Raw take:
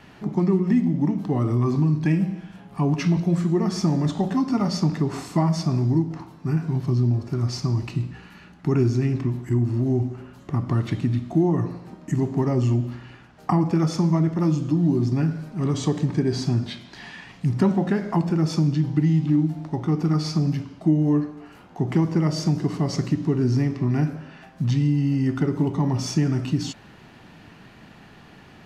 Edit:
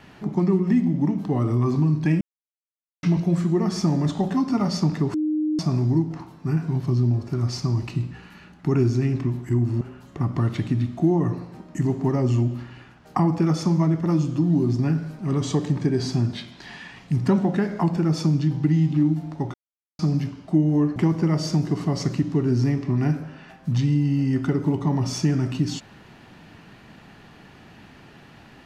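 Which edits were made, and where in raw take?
2.21–3.03 mute
5.14–5.59 bleep 307 Hz -20 dBFS
9.81–10.14 cut
19.87–20.32 mute
21.29–21.89 cut

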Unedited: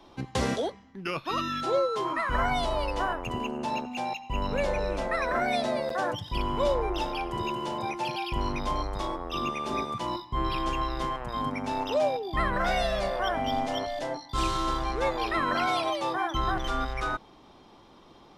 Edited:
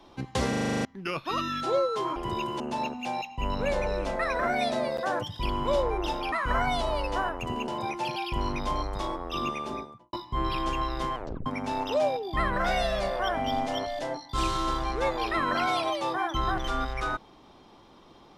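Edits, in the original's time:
0.49 stutter in place 0.04 s, 9 plays
2.16–3.52 swap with 7.24–7.68
9.49–10.13 studio fade out
11.15 tape stop 0.31 s

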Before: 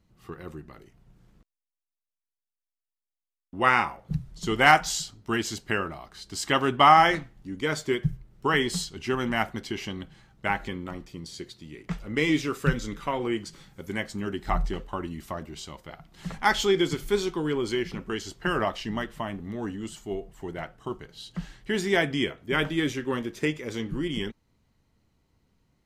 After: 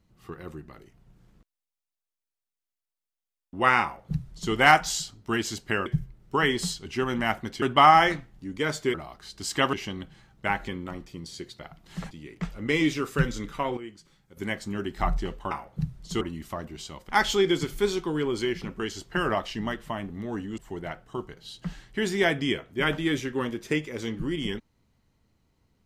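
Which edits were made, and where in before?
3.83–4.53 copy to 14.99
5.86–6.65 swap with 7.97–9.73
13.25–13.85 gain -12 dB
15.87–16.39 move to 11.59
19.88–20.3 cut

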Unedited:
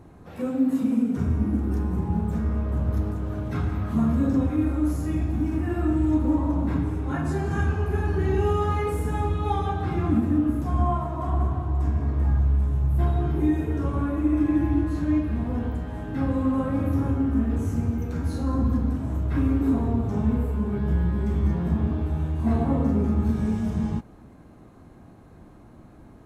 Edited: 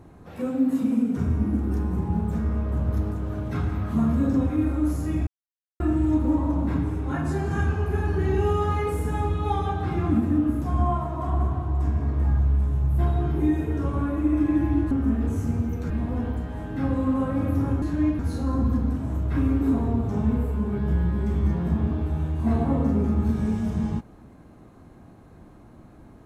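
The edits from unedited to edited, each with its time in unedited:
5.27–5.8 mute
14.91–15.28 swap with 17.2–18.19

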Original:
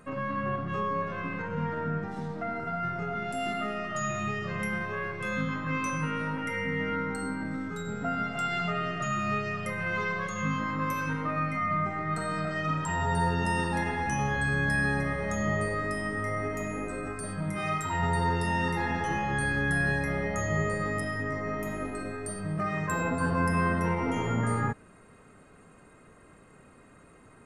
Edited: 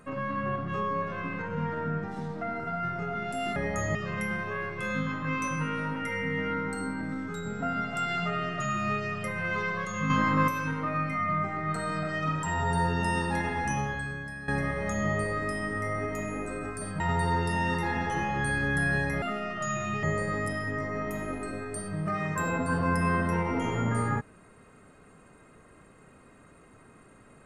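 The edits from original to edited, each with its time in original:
3.56–4.37 swap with 20.16–20.55
10.52–10.9 gain +6.5 dB
14.15–14.9 fade out quadratic, to -14.5 dB
17.42–17.94 cut

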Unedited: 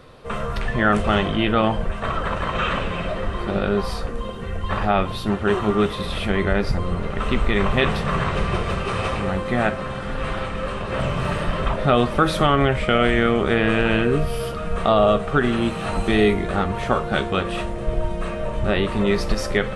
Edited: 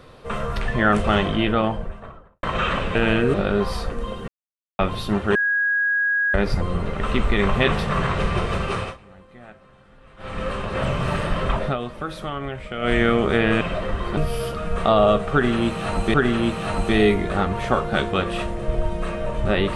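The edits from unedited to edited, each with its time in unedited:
1.3–2.43 studio fade out
2.95–3.51 swap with 13.78–14.17
4.45–4.96 mute
5.52–6.51 bleep 1650 Hz -17.5 dBFS
8.91–10.57 dip -23.5 dB, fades 0.23 s
11.79–13.11 dip -12 dB, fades 0.15 s
15.33–16.14 loop, 2 plays

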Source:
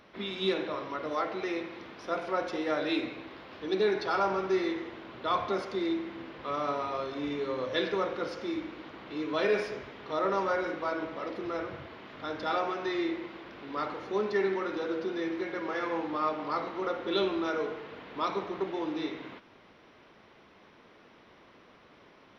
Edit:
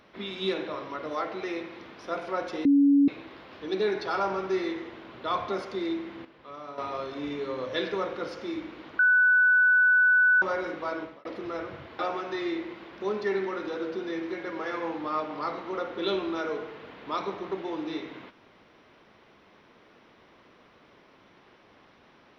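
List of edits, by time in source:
2.65–3.08 bleep 282 Hz -16 dBFS
6.25–6.78 gain -10 dB
8.99–10.42 bleep 1490 Hz -17 dBFS
10.98–11.25 fade out
11.99–12.52 cut
13.54–14.1 cut

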